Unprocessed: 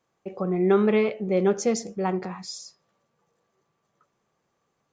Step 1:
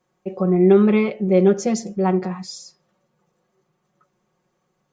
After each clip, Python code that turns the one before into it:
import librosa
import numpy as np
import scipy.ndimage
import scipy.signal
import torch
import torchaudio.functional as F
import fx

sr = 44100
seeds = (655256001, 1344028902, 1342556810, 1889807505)

y = fx.low_shelf(x, sr, hz=490.0, db=5.0)
y = y + 0.69 * np.pad(y, (int(5.5 * sr / 1000.0), 0))[:len(y)]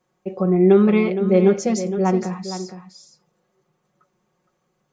y = x + 10.0 ** (-11.0 / 20.0) * np.pad(x, (int(465 * sr / 1000.0), 0))[:len(x)]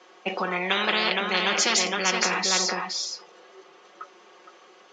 y = fx.cabinet(x, sr, low_hz=370.0, low_slope=24, high_hz=5700.0, hz=(570.0, 890.0, 3000.0), db=(-6, -3, 5))
y = fx.spectral_comp(y, sr, ratio=10.0)
y = y * librosa.db_to_amplitude(2.5)